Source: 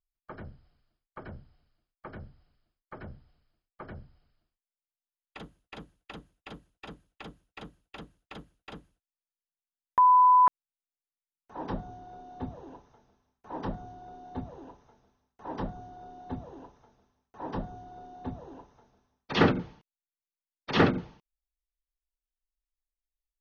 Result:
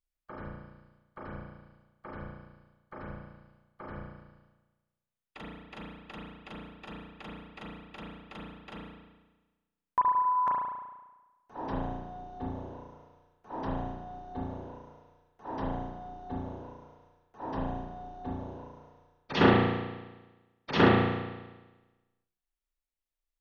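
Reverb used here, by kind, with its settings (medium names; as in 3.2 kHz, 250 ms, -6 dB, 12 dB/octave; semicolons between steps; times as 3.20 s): spring tank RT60 1.2 s, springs 34 ms, chirp 45 ms, DRR -3.5 dB; trim -3 dB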